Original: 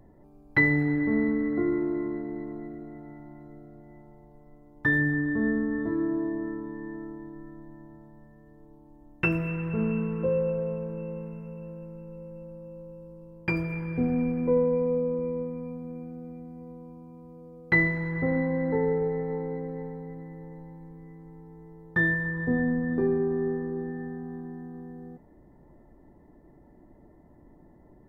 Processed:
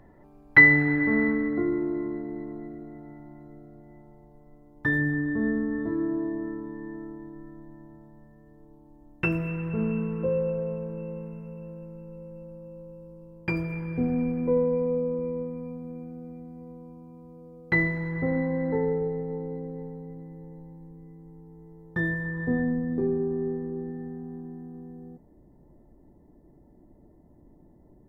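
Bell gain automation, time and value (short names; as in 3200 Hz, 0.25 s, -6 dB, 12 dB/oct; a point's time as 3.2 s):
bell 1800 Hz 2.1 oct
1.29 s +9 dB
1.7 s -2 dB
18.76 s -2 dB
19.25 s -12 dB
21.45 s -12 dB
22.52 s -1 dB
22.95 s -11 dB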